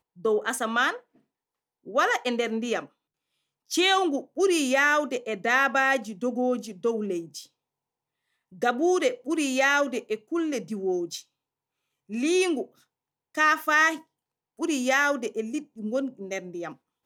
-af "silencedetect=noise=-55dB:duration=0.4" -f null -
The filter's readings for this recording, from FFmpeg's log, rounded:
silence_start: 1.19
silence_end: 1.85 | silence_duration: 0.66
silence_start: 2.89
silence_end: 3.69 | silence_duration: 0.81
silence_start: 7.47
silence_end: 8.52 | silence_duration: 1.04
silence_start: 11.24
silence_end: 12.09 | silence_duration: 0.85
silence_start: 12.83
silence_end: 13.35 | silence_duration: 0.51
silence_start: 14.04
silence_end: 14.58 | silence_duration: 0.54